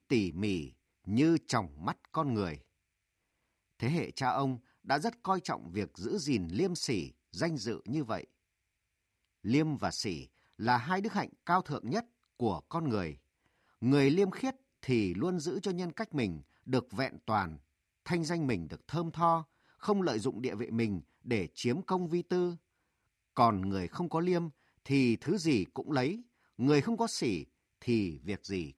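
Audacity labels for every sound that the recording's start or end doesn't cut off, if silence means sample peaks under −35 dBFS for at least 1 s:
3.820000	8.210000	sound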